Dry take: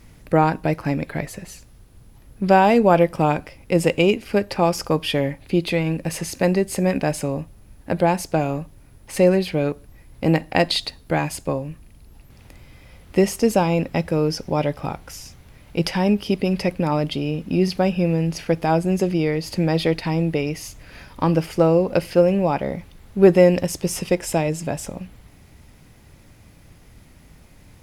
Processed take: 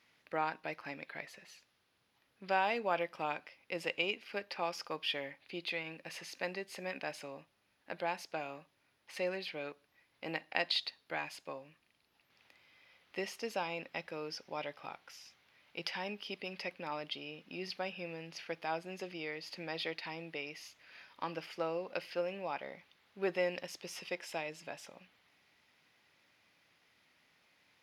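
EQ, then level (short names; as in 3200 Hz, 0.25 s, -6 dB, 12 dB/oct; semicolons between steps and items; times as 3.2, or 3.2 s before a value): HPF 120 Hz 6 dB/oct; air absorption 300 m; differentiator; +3.5 dB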